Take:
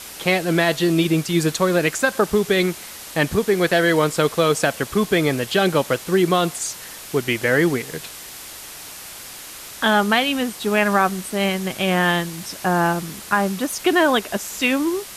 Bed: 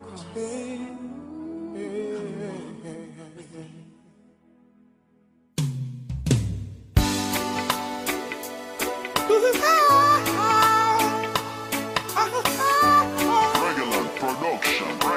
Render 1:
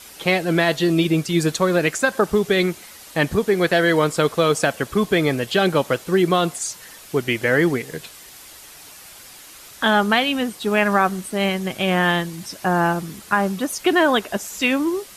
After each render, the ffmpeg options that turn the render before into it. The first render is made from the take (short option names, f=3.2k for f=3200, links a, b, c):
-af "afftdn=nr=7:nf=-37"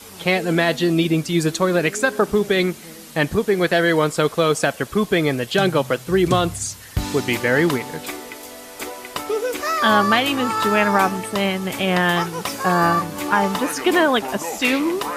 -filter_complex "[1:a]volume=-4dB[a];[0:a][a]amix=inputs=2:normalize=0"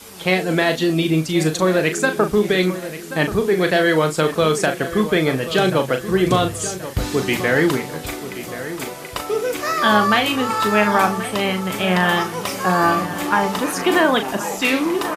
-filter_complex "[0:a]asplit=2[a][b];[b]adelay=38,volume=-8dB[c];[a][c]amix=inputs=2:normalize=0,asplit=2[d][e];[e]adelay=1081,lowpass=f=3.3k:p=1,volume=-12.5dB,asplit=2[f][g];[g]adelay=1081,lowpass=f=3.3k:p=1,volume=0.47,asplit=2[h][i];[i]adelay=1081,lowpass=f=3.3k:p=1,volume=0.47,asplit=2[j][k];[k]adelay=1081,lowpass=f=3.3k:p=1,volume=0.47,asplit=2[l][m];[m]adelay=1081,lowpass=f=3.3k:p=1,volume=0.47[n];[d][f][h][j][l][n]amix=inputs=6:normalize=0"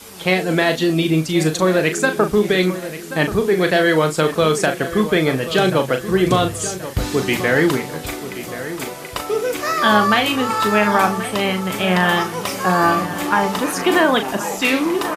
-af "volume=1dB,alimiter=limit=-3dB:level=0:latency=1"